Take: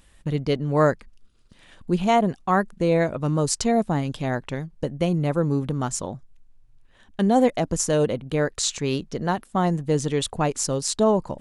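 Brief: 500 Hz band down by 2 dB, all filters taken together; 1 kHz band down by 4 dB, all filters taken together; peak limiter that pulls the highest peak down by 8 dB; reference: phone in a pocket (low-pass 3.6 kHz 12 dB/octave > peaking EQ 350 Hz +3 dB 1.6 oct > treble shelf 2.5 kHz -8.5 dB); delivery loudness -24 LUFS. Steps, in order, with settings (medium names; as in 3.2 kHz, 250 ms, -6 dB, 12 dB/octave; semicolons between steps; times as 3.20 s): peaking EQ 500 Hz -3.5 dB; peaking EQ 1 kHz -4 dB; peak limiter -16 dBFS; low-pass 3.6 kHz 12 dB/octave; peaking EQ 350 Hz +3 dB 1.6 oct; treble shelf 2.5 kHz -8.5 dB; trim +2.5 dB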